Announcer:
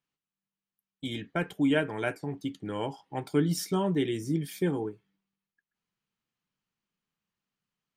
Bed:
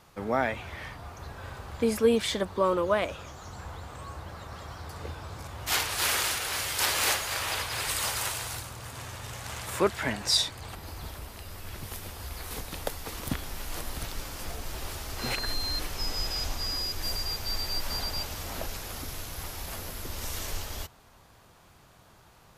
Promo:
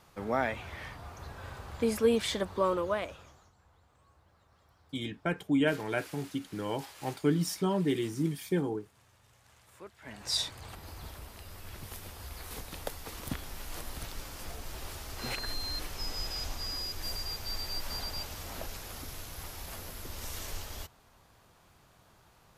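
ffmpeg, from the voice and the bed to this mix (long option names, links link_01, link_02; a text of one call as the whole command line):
ffmpeg -i stem1.wav -i stem2.wav -filter_complex "[0:a]adelay=3900,volume=-1.5dB[link_01];[1:a]volume=16dB,afade=type=out:start_time=2.65:duration=0.88:silence=0.0891251,afade=type=in:start_time=10.01:duration=0.43:silence=0.112202[link_02];[link_01][link_02]amix=inputs=2:normalize=0" out.wav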